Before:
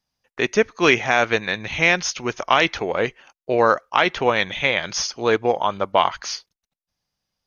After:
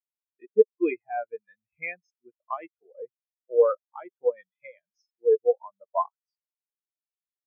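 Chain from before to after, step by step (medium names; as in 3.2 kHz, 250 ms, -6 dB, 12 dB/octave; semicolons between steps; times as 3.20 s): band-stop 410 Hz, Q 12; spectral contrast expander 4:1; trim -4.5 dB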